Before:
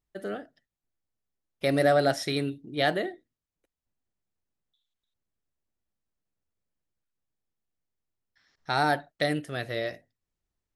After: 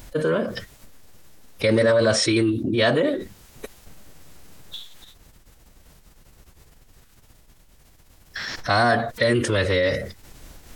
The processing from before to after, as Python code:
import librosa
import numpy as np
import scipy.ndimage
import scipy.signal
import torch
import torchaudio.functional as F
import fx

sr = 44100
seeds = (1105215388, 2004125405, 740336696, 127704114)

y = fx.pitch_keep_formants(x, sr, semitones=-4.0)
y = fx.env_flatten(y, sr, amount_pct=70)
y = y * 10.0 ** (3.0 / 20.0)